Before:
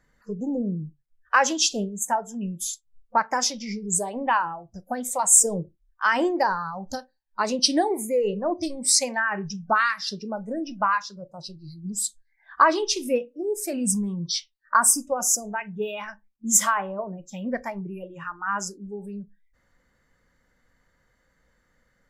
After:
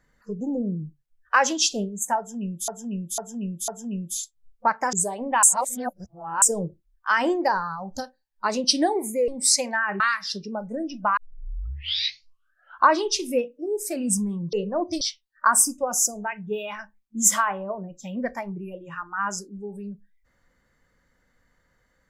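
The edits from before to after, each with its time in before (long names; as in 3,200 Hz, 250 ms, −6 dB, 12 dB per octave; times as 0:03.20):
0:02.18–0:02.68: repeat, 4 plays
0:03.43–0:03.88: remove
0:04.38–0:05.37: reverse
0:08.23–0:08.71: move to 0:14.30
0:09.43–0:09.77: remove
0:10.94: tape start 1.78 s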